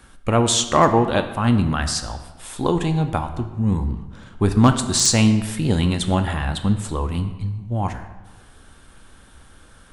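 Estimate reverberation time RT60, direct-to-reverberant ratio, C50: 1.2 s, 7.0 dB, 10.0 dB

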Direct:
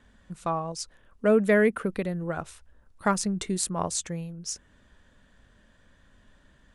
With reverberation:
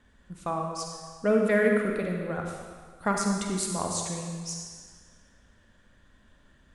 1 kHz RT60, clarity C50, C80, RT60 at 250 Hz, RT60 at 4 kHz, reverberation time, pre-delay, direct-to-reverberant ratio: 1.8 s, 1.5 dB, 3.5 dB, 1.6 s, 1.5 s, 1.7 s, 39 ms, 0.5 dB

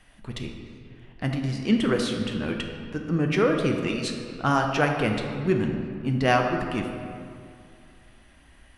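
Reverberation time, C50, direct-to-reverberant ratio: 2.4 s, 4.5 dB, 2.5 dB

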